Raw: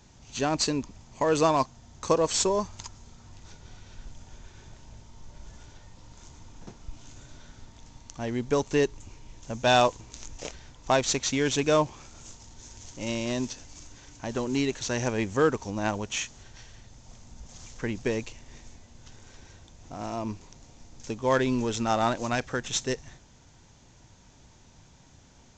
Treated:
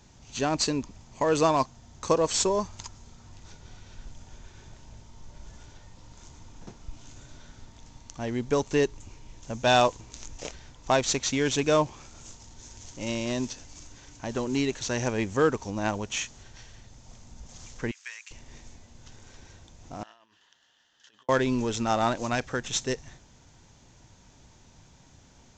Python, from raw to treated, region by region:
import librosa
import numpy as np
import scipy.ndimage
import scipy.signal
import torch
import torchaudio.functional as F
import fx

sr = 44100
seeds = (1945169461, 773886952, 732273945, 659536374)

y = fx.chain(x, sr, fx.highpass(hz=1500.0, slope=24),
    fx.dynamic_eq(hz=3900.0, q=1.3, threshold_db=-56.0, ratio=4.0, max_db=-7), at=(17.91, 18.31))
y = fx.chain(y, sr, fx.over_compress(threshold_db=-36.0, ratio=-0.5),
    fx.double_bandpass(hz=2300.0, octaves=0.8), at=(20.03, 21.29))